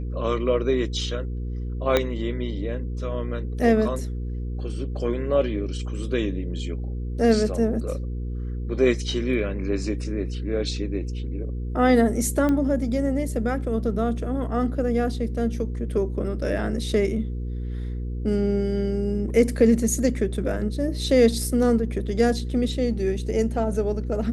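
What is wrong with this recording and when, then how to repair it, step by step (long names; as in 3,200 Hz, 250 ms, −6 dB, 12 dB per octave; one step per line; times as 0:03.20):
mains hum 60 Hz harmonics 8 −29 dBFS
0:01.97: click −6 dBFS
0:12.49: click −14 dBFS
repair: click removal
hum removal 60 Hz, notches 8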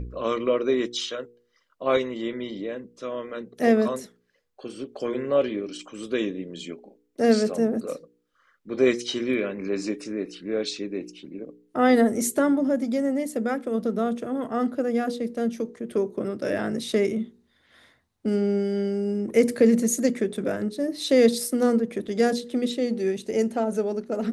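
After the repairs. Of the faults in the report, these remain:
0:01.97: click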